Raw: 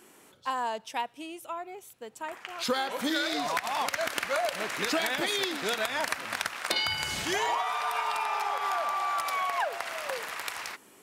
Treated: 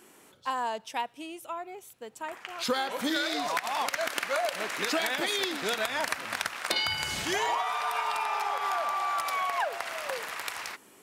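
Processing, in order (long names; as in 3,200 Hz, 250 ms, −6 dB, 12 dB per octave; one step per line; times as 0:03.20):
0:03.16–0:05.44: Bessel high-pass filter 190 Hz, order 2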